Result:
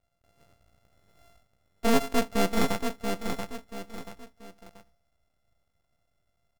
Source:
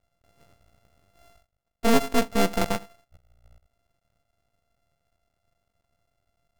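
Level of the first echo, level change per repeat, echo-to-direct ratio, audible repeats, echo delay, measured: −5.5 dB, −9.0 dB, −5.0 dB, 3, 683 ms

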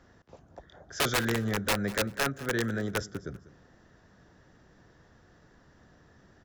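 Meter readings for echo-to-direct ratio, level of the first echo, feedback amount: −17.5 dB, −18.0 dB, 26%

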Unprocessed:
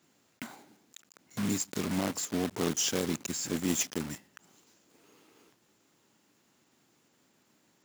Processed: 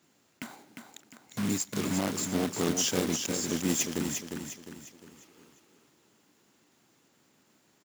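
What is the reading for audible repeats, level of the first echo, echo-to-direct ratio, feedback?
4, −6.0 dB, −5.0 dB, 41%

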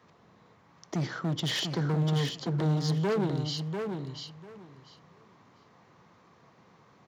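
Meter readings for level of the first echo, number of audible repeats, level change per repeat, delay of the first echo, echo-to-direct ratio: −6.0 dB, 2, −15.0 dB, 694 ms, −6.0 dB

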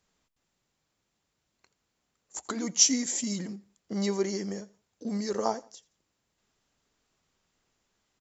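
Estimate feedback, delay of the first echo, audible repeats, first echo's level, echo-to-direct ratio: 35%, 85 ms, 2, −22.0 dB, −21.5 dB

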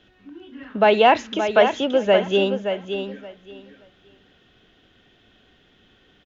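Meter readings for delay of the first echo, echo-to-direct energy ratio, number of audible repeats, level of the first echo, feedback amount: 572 ms, −8.0 dB, 2, −8.0 dB, 18%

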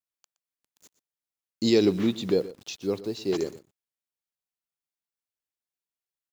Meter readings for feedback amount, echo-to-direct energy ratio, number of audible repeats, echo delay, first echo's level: repeats not evenly spaced, −17.0 dB, 1, 119 ms, −17.0 dB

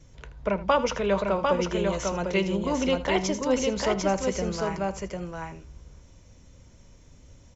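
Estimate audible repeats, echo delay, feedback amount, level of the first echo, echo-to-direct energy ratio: 3, 79 ms, repeats not evenly spaced, −16.0 dB, −3.0 dB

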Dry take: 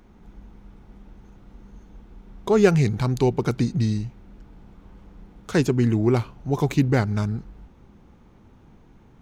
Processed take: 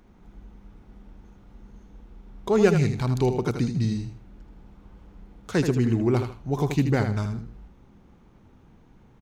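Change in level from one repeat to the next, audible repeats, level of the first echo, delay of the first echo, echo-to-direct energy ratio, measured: −11.0 dB, 2, −8.0 dB, 79 ms, −7.5 dB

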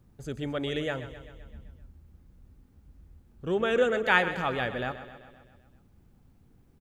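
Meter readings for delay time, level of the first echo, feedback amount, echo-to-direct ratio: 129 ms, −12.5 dB, 60%, −10.5 dB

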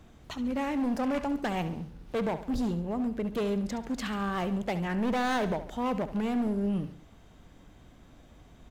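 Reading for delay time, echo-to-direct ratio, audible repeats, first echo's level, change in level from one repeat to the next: 70 ms, −12.0 dB, 3, −13.0 dB, −6.5 dB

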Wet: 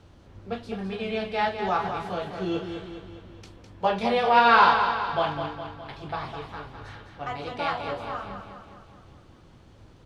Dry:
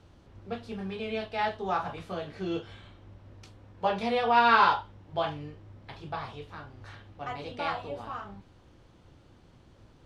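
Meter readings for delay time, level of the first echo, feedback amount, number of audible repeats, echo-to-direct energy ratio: 206 ms, −7.5 dB, 54%, 6, −6.0 dB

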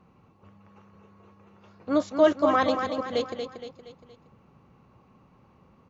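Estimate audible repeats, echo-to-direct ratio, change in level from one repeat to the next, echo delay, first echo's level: 4, −6.0 dB, −6.5 dB, 234 ms, −7.0 dB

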